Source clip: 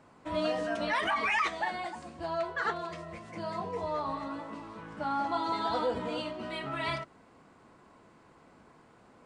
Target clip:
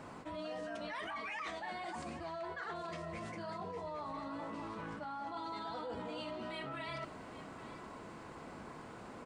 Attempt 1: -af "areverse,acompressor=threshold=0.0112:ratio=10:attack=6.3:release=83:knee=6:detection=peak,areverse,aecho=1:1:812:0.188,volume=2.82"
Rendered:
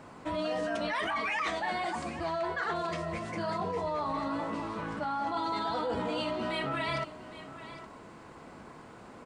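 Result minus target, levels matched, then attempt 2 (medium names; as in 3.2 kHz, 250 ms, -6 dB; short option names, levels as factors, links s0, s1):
compression: peak gain reduction -10.5 dB
-af "areverse,acompressor=threshold=0.00299:ratio=10:attack=6.3:release=83:knee=6:detection=peak,areverse,aecho=1:1:812:0.188,volume=2.82"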